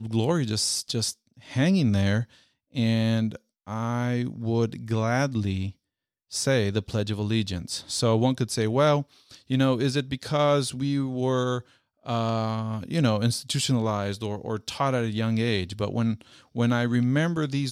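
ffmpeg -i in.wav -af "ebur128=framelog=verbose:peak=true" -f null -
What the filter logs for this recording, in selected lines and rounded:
Integrated loudness:
  I:         -25.9 LUFS
  Threshold: -36.2 LUFS
Loudness range:
  LRA:         2.4 LU
  Threshold: -46.4 LUFS
  LRA low:   -27.5 LUFS
  LRA high:  -25.0 LUFS
True peak:
  Peak:      -10.2 dBFS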